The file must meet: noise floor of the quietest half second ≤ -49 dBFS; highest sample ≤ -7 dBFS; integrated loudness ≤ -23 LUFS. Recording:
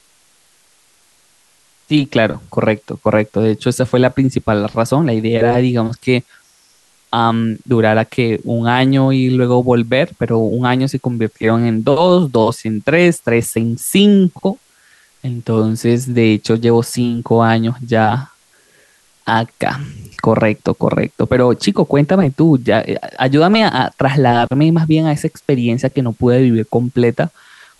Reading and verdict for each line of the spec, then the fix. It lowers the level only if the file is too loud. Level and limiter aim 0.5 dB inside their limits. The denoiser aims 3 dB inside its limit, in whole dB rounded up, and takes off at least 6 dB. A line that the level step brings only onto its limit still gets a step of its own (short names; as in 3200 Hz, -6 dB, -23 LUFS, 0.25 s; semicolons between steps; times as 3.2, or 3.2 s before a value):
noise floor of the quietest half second -54 dBFS: OK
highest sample -1.5 dBFS: fail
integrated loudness -14.5 LUFS: fail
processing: gain -9 dB